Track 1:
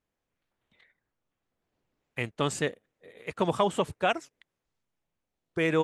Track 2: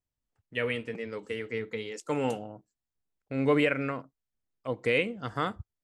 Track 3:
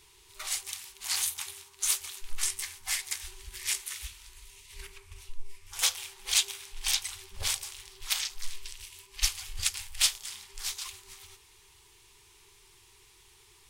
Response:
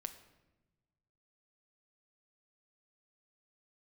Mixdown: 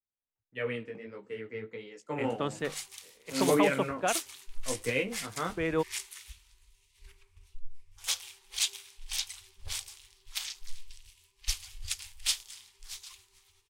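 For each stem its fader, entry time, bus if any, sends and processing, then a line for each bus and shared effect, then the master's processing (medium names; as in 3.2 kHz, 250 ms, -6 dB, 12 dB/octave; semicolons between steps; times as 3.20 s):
-6.5 dB, 0.00 s, no send, hum notches 50/100/150 Hz
-4.0 dB, 0.00 s, send -9.5 dB, chorus 1.6 Hz, delay 15 ms, depth 4.5 ms
-5.5 dB, 2.25 s, no send, none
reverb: on, RT60 1.1 s, pre-delay 7 ms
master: treble shelf 7.5 kHz -5 dB; three bands expanded up and down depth 40%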